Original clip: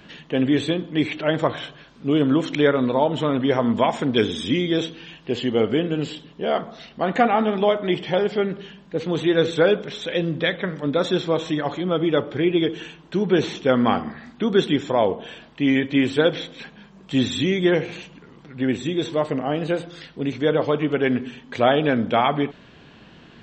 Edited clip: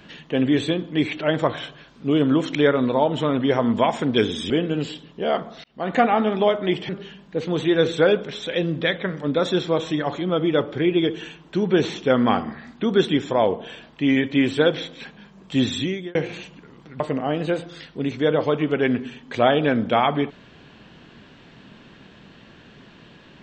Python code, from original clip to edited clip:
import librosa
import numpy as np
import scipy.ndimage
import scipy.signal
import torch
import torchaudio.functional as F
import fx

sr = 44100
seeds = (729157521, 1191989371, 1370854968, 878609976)

y = fx.edit(x, sr, fx.cut(start_s=4.5, length_s=1.21),
    fx.fade_in_span(start_s=6.85, length_s=0.33),
    fx.cut(start_s=8.1, length_s=0.38),
    fx.fade_out_span(start_s=17.31, length_s=0.43),
    fx.cut(start_s=18.59, length_s=0.62), tone=tone)